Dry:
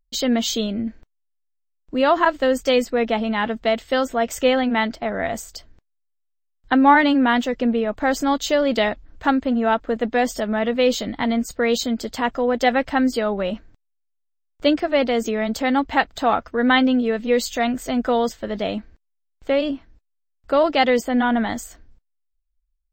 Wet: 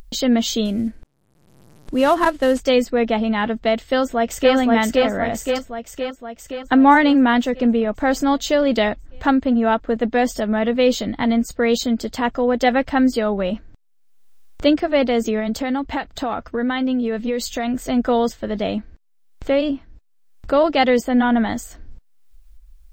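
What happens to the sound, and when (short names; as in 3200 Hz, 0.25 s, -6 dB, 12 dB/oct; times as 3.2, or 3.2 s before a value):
0.65–2.6 CVSD 64 kbps
3.78–4.54 echo throw 0.52 s, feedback 60%, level -1.5 dB
15.39–17.9 compressor, threshold -20 dBFS
whole clip: upward compressor, threshold -28 dBFS; low shelf 350 Hz +5 dB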